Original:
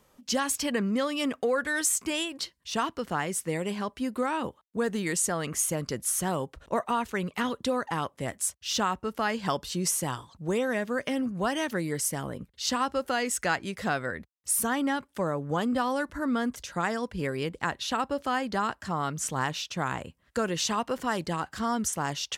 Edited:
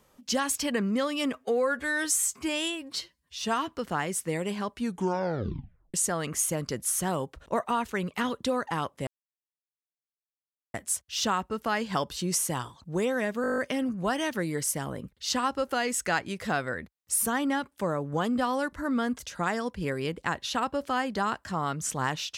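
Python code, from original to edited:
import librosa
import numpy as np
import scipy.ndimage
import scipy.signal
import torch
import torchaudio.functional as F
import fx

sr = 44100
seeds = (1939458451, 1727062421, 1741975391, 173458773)

y = fx.edit(x, sr, fx.stretch_span(start_s=1.33, length_s=1.6, factor=1.5),
    fx.tape_stop(start_s=3.94, length_s=1.2),
    fx.insert_silence(at_s=8.27, length_s=1.67),
    fx.stutter(start_s=10.95, slice_s=0.02, count=9), tone=tone)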